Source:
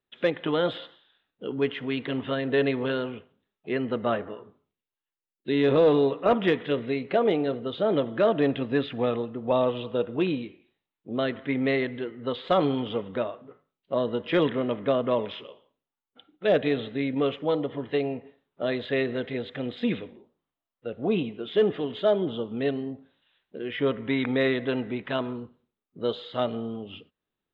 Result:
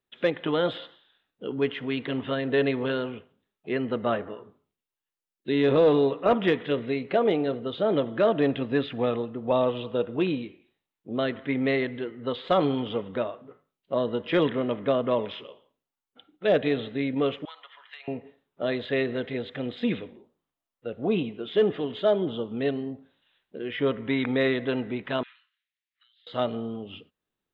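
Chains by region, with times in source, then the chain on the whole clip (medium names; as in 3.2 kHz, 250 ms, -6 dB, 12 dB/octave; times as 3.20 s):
17.45–18.08 s: high-pass 1.2 kHz 24 dB/octave + compression 10:1, threshold -39 dBFS
25.23–26.27 s: elliptic high-pass 1.8 kHz, stop band 70 dB + compressor with a negative ratio -56 dBFS + distance through air 240 m
whole clip: none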